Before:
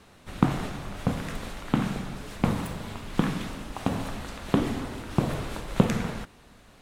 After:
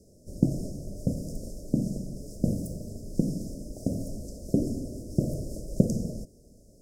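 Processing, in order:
Chebyshev band-stop filter 620–5,100 Hz, order 5
dynamic equaliser 440 Hz, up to −5 dB, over −50 dBFS, Q 5.8

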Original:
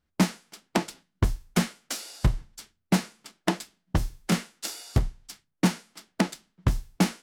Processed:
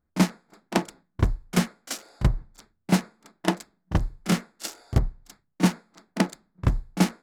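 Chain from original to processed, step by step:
adaptive Wiener filter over 15 samples
backwards echo 33 ms −13 dB
level +1.5 dB

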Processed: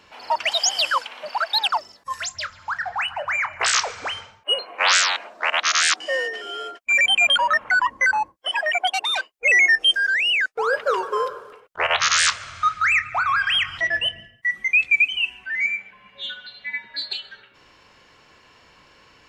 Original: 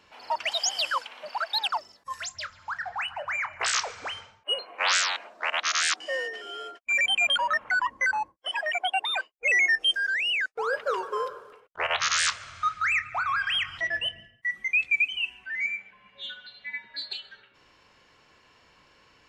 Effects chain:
0:08.87–0:09.30: saturating transformer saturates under 3,400 Hz
level +6.5 dB

